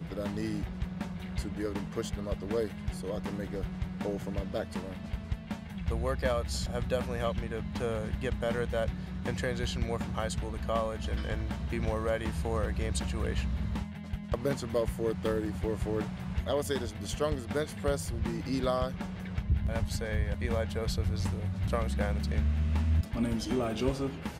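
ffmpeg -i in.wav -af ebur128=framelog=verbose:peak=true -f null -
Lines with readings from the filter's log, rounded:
Integrated loudness:
  I:         -33.2 LUFS
  Threshold: -43.2 LUFS
Loudness range:
  LRA:         4.4 LU
  Threshold: -53.3 LUFS
  LRA low:   -35.7 LUFS
  LRA high:  -31.3 LUFS
True peak:
  Peak:      -15.9 dBFS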